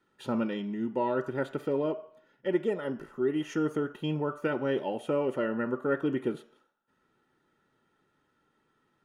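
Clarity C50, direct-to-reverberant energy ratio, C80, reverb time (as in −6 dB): 15.0 dB, 9.0 dB, 18.5 dB, 0.55 s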